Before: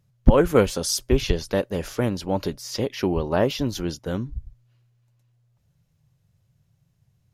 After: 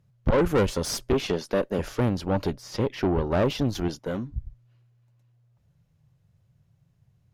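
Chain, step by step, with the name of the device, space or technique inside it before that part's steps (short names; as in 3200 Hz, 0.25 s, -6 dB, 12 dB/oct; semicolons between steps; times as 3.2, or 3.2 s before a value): 1.13–1.79 HPF 180 Hz 24 dB/oct; 3.88–4.34 HPF 200 Hz 6 dB/oct; tube preamp driven hard (tube stage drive 21 dB, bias 0.55; high shelf 3400 Hz -8.5 dB); 2.51–3.3 high shelf 4400 Hz -5 dB; gain +4 dB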